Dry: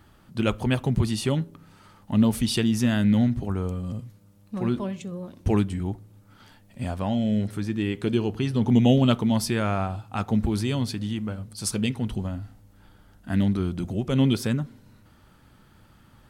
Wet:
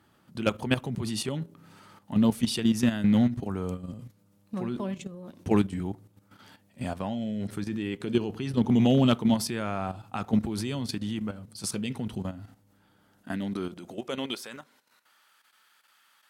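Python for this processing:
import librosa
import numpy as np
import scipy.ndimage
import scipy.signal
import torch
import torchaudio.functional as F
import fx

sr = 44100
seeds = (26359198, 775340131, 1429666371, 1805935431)

y = fx.filter_sweep_highpass(x, sr, from_hz=130.0, to_hz=1500.0, start_s=12.85, end_s=15.34, q=0.71)
y = fx.level_steps(y, sr, step_db=11)
y = fx.clip_asym(y, sr, top_db=-18.5, bottom_db=-12.0)
y = y * librosa.db_to_amplitude(2.0)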